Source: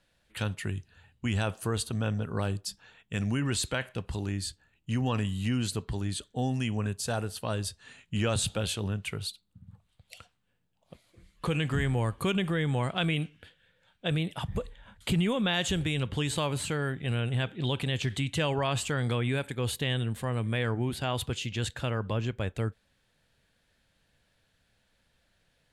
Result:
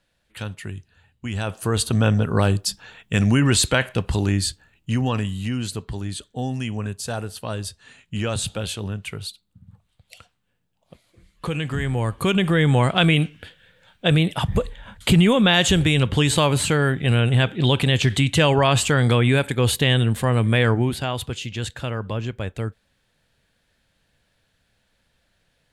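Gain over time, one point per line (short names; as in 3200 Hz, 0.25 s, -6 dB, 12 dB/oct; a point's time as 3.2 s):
1.29 s +0.5 dB
1.92 s +12 dB
4.37 s +12 dB
5.5 s +3 dB
11.78 s +3 dB
12.65 s +11.5 dB
20.71 s +11.5 dB
21.18 s +3.5 dB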